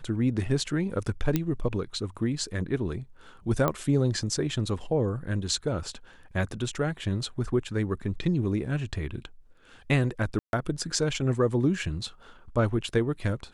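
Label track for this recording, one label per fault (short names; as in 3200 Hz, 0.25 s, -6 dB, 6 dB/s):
1.360000	1.360000	pop -11 dBFS
3.680000	3.680000	pop -13 dBFS
10.390000	10.530000	gap 0.141 s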